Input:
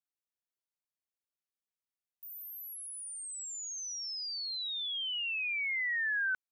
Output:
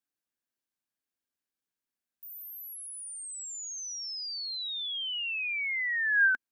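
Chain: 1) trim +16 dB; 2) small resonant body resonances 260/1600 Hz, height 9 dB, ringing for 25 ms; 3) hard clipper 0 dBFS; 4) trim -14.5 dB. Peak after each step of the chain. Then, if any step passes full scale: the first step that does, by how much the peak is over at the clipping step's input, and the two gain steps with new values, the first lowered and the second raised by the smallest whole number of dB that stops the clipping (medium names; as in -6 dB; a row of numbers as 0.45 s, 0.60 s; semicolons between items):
-12.0 dBFS, -3.5 dBFS, -3.5 dBFS, -18.0 dBFS; nothing clips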